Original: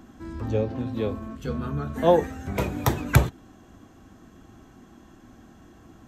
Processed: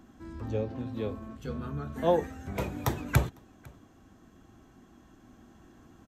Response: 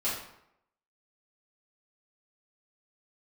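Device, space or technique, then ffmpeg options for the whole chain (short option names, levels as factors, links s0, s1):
ducked delay: -filter_complex "[0:a]asplit=3[s0][s1][s2];[s1]adelay=502,volume=0.631[s3];[s2]apad=whole_len=289865[s4];[s3][s4]sidechaincompress=threshold=0.0112:ratio=8:attack=12:release=1260[s5];[s0][s5]amix=inputs=2:normalize=0,volume=0.473"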